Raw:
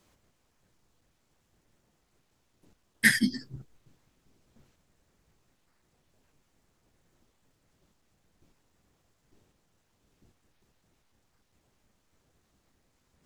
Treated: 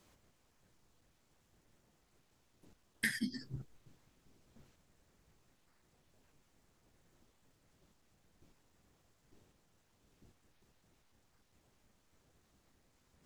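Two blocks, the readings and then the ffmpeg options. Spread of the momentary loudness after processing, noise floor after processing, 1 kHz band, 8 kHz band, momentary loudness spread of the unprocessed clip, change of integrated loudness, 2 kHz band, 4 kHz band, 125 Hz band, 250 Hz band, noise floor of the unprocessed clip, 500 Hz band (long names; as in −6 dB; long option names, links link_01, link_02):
14 LU, −74 dBFS, −11.5 dB, −13.5 dB, 13 LU, −14.0 dB, −14.0 dB, −12.0 dB, −7.5 dB, −11.5 dB, −73 dBFS, −8.5 dB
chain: -af "acompressor=threshold=-33dB:ratio=5,volume=-1dB"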